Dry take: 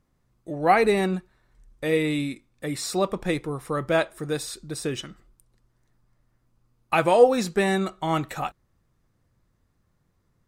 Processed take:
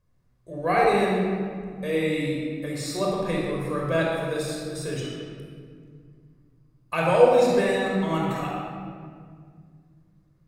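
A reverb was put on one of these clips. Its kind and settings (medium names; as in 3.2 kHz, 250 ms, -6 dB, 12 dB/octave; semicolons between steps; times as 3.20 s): simulated room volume 3600 m³, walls mixed, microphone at 5.4 m; trim -8 dB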